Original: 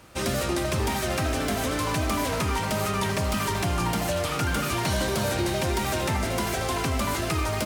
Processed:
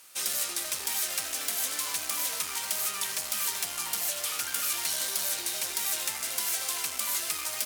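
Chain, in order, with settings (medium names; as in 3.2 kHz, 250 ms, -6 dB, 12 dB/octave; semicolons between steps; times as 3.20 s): one-sided clip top -27 dBFS; differentiator; trim +6 dB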